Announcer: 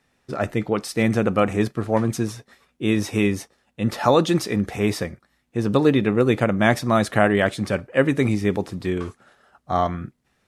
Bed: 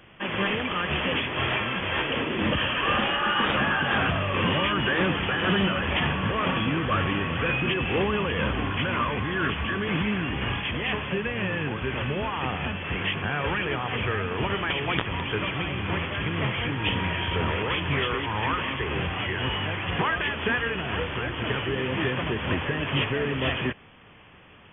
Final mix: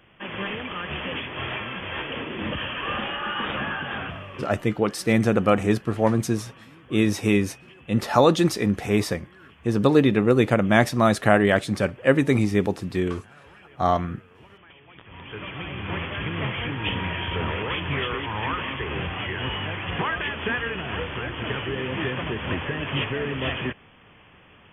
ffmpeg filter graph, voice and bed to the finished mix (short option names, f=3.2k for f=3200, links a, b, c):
-filter_complex "[0:a]adelay=4100,volume=0dB[a];[1:a]volume=18dB,afade=t=out:st=3.69:d=0.87:silence=0.112202,afade=t=in:st=14.97:d=1.07:silence=0.0749894[b];[a][b]amix=inputs=2:normalize=0"